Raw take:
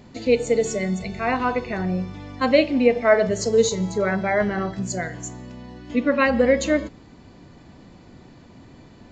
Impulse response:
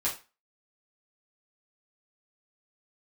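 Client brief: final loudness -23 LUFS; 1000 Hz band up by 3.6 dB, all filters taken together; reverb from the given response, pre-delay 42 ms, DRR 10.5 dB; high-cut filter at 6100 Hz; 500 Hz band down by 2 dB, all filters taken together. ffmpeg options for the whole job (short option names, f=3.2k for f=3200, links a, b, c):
-filter_complex "[0:a]lowpass=6.1k,equalizer=f=500:t=o:g=-4,equalizer=f=1k:t=o:g=6,asplit=2[a][b];[1:a]atrim=start_sample=2205,adelay=42[c];[b][c]afir=irnorm=-1:irlink=0,volume=-17dB[d];[a][d]amix=inputs=2:normalize=0,volume=-1dB"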